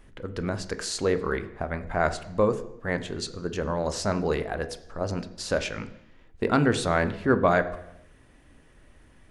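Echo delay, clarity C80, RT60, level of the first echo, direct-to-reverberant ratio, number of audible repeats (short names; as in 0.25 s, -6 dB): none, 16.0 dB, 0.85 s, none, 10.0 dB, none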